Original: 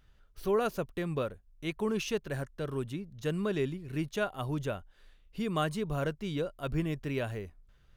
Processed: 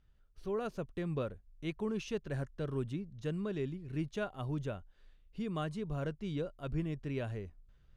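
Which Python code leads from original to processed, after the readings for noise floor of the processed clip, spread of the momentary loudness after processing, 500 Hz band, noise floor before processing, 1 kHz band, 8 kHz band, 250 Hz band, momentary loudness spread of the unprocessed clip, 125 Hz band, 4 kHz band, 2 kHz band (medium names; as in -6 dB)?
-66 dBFS, 6 LU, -6.0 dB, -63 dBFS, -8.0 dB, -10.5 dB, -3.5 dB, 8 LU, -2.5 dB, -8.5 dB, -8.0 dB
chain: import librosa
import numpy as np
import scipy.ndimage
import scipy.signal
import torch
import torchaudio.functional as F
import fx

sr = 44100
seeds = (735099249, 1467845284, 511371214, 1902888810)

y = scipy.signal.sosfilt(scipy.signal.butter(2, 8000.0, 'lowpass', fs=sr, output='sos'), x)
y = fx.low_shelf(y, sr, hz=400.0, db=6.5)
y = fx.rider(y, sr, range_db=4, speed_s=0.5)
y = F.gain(torch.from_numpy(y), -8.0).numpy()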